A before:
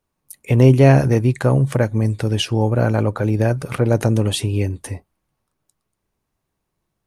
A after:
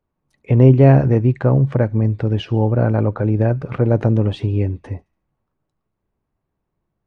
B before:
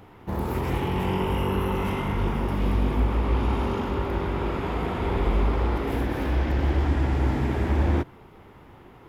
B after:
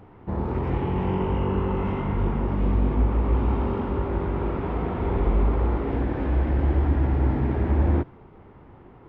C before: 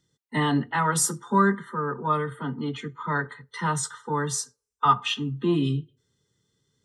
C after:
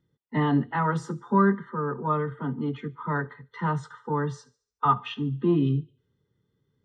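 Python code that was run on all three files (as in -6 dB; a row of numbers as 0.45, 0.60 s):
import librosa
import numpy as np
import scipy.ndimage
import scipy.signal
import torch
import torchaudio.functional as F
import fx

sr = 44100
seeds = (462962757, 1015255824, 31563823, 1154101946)

y = fx.spacing_loss(x, sr, db_at_10k=38)
y = fx.echo_wet_highpass(y, sr, ms=72, feedback_pct=47, hz=3200.0, wet_db=-18.5)
y = y * 10.0 ** (2.0 / 20.0)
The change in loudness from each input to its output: +1.0, +1.0, -1.0 LU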